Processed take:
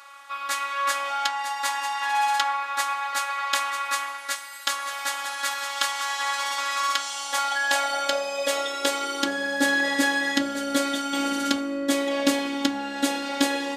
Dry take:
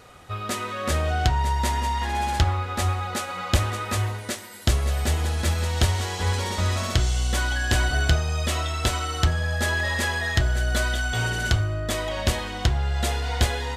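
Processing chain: robotiser 280 Hz; high-pass sweep 1100 Hz -> 280 Hz, 6.89–9.69; gain +3.5 dB

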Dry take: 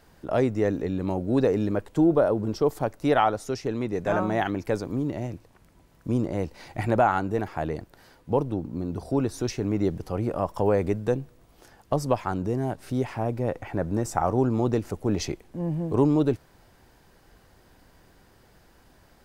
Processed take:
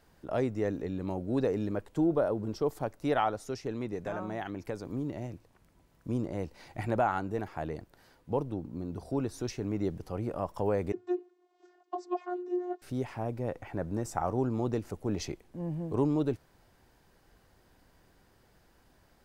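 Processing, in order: 3.94–4.85 compressor, threshold -25 dBFS, peak gain reduction 5.5 dB; 10.92–12.82 vocoder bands 32, saw 358 Hz; gain -7 dB

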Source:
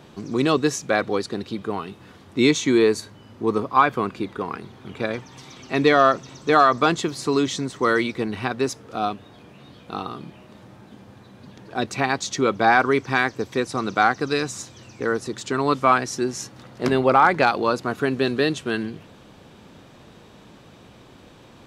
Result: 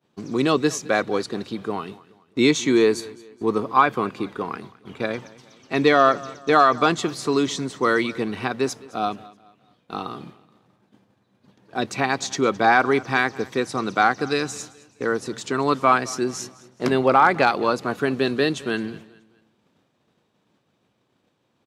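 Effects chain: HPF 110 Hz; expander -35 dBFS; feedback echo 0.213 s, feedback 38%, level -21 dB

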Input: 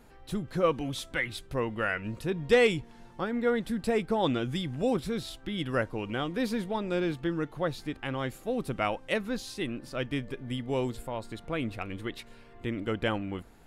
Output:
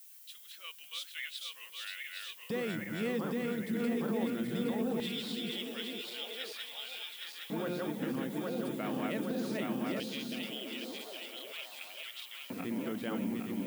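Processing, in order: regenerating reverse delay 0.407 s, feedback 78%, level -2 dB; LFO high-pass square 0.2 Hz 210–3000 Hz; limiter -19 dBFS, peak gain reduction 11 dB; added noise violet -46 dBFS; on a send: delay with a stepping band-pass 0.507 s, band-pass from 190 Hz, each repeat 0.7 oct, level -3.5 dB; on the sum: gain -8.5 dB

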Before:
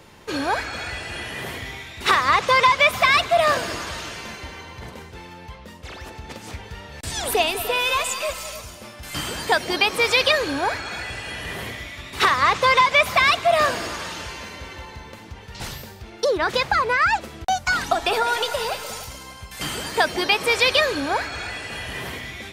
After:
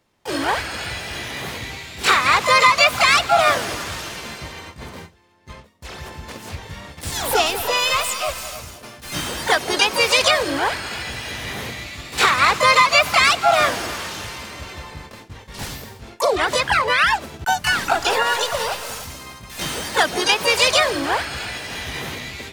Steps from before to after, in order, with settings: gate with hold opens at -28 dBFS; harmoniser +3 st -4 dB, +12 st -5 dB

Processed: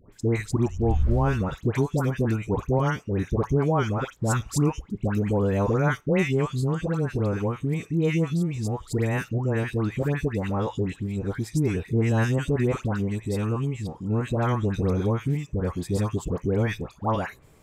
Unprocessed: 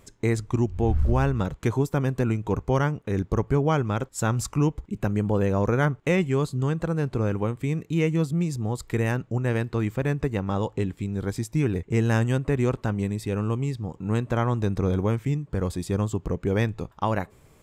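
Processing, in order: dispersion highs, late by 0.126 s, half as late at 1300 Hz

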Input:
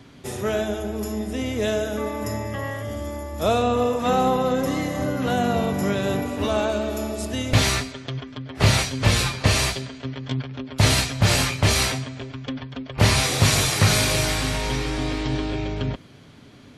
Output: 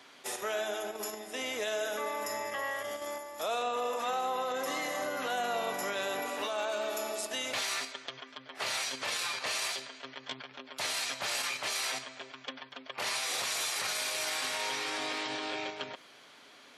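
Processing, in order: HPF 700 Hz 12 dB/oct; in parallel at -0.5 dB: level quantiser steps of 19 dB; on the sum: limiter -19 dBFS, peak gain reduction 10.5 dB; gain -5.5 dB

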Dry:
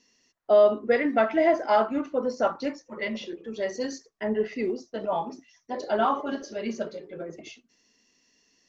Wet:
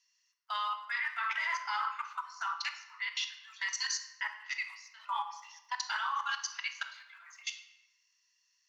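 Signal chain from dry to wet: steep high-pass 950 Hz 72 dB/oct; high shelf 3200 Hz +4 dB; level quantiser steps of 21 dB; shoebox room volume 580 m³, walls mixed, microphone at 0.65 m; gain +8 dB

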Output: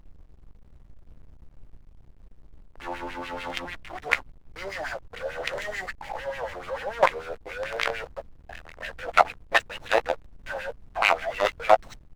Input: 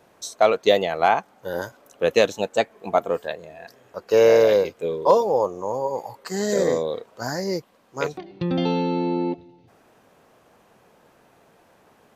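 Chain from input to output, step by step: whole clip reversed; expander -45 dBFS; thirty-one-band EQ 100 Hz -3 dB, 200 Hz -11 dB, 400 Hz -8 dB, 1000 Hz -8 dB, 2000 Hz +8 dB, 3150 Hz +4 dB, 8000 Hz +8 dB; vocal rider within 3 dB 0.5 s; companded quantiser 2-bit; LFO band-pass sine 6.8 Hz 670–2500 Hz; added noise brown -46 dBFS; doubler 15 ms -12 dB; backlash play -42 dBFS; gain +1 dB

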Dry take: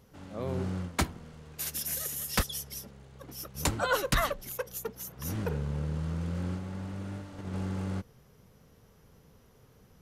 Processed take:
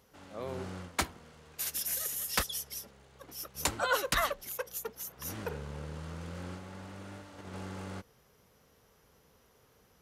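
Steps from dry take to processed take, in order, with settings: HPF 51 Hz; bell 130 Hz -11 dB 2.6 oct

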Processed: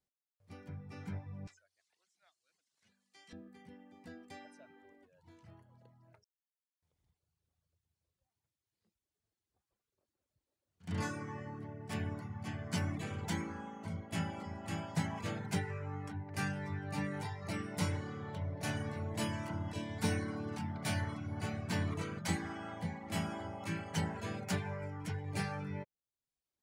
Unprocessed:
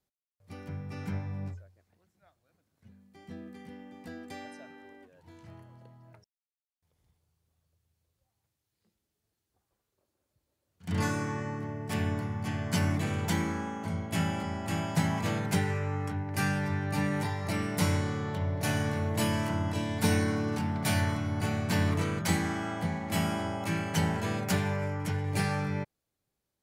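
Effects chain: 1.47–3.33 weighting filter ITU-R 468; reverb removal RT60 0.73 s; bell 13000 Hz -10.5 dB 0.34 oct; gain -6.5 dB

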